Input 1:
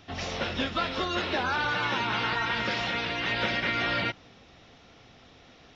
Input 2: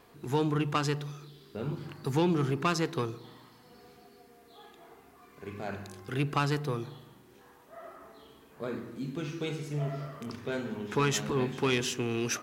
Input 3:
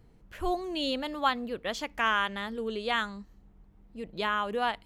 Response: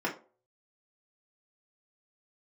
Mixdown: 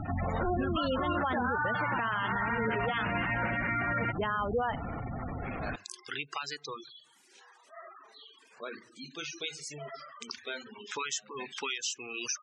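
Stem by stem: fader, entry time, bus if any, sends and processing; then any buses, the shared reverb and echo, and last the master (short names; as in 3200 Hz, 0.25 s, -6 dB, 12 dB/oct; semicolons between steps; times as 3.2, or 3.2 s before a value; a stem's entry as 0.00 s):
+1.5 dB, 0.00 s, no send, LPF 1600 Hz 12 dB/oct; bell 430 Hz -8 dB 1.3 oct; fast leveller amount 70%
+1.5 dB, 0.00 s, no send, weighting filter ITU-R 468; reverb removal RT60 0.95 s; compressor 4:1, threshold -34 dBFS, peak gain reduction 14.5 dB; auto duck -21 dB, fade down 1.25 s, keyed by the third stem
+2.0 dB, 0.00 s, no send, running mean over 4 samples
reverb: off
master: spectral gate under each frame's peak -15 dB strong; limiter -22 dBFS, peak gain reduction 10 dB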